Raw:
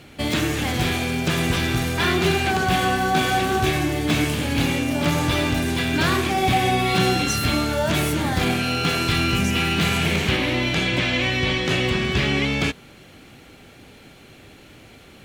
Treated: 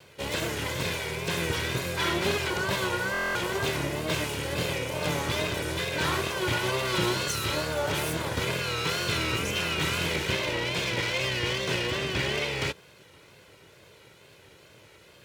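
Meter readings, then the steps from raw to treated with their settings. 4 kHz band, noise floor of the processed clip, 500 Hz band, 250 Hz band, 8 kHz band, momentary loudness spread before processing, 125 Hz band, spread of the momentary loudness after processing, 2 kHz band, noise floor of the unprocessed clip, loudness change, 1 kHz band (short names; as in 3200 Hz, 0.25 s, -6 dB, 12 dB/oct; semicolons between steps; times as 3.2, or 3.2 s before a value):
-5.5 dB, -55 dBFS, -5.0 dB, -12.0 dB, -4.5 dB, 3 LU, -9.5 dB, 3 LU, -6.0 dB, -47 dBFS, -7.0 dB, -9.5 dB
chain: minimum comb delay 2 ms; HPF 94 Hz 12 dB/oct; wow and flutter 91 cents; stuck buffer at 3.12, samples 1024, times 9; gain -5 dB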